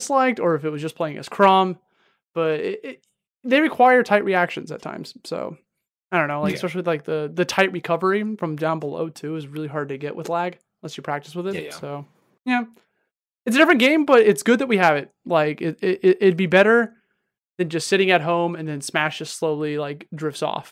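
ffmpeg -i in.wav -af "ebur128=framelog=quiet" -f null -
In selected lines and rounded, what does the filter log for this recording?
Integrated loudness:
  I:         -20.5 LUFS
  Threshold: -31.2 LUFS
Loudness range:
  LRA:        10.1 LU
  Threshold: -41.2 LUFS
  LRA low:   -27.9 LUFS
  LRA high:  -17.8 LUFS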